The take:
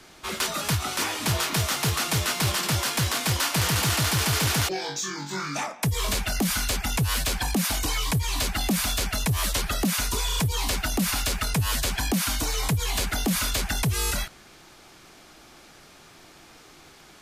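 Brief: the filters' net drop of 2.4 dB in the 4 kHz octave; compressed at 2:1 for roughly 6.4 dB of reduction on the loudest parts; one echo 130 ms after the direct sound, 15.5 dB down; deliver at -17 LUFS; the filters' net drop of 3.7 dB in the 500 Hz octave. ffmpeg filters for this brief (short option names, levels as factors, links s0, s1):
-af "equalizer=f=500:t=o:g=-5,equalizer=f=4000:t=o:g=-3,acompressor=threshold=0.0224:ratio=2,aecho=1:1:130:0.168,volume=5.31"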